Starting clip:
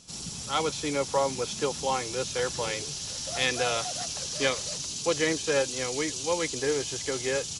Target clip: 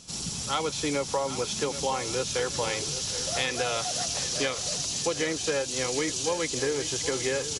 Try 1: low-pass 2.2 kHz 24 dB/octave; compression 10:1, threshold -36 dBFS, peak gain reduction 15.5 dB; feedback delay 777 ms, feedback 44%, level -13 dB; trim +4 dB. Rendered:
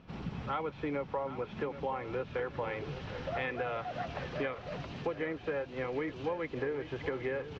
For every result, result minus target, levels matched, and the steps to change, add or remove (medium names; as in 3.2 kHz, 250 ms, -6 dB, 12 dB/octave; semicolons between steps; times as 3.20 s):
compression: peak gain reduction +6.5 dB; 2 kHz band +2.0 dB
change: compression 10:1, threshold -28 dBFS, peak gain reduction 8 dB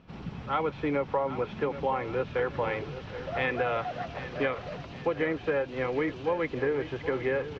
2 kHz band +2.5 dB
remove: low-pass 2.2 kHz 24 dB/octave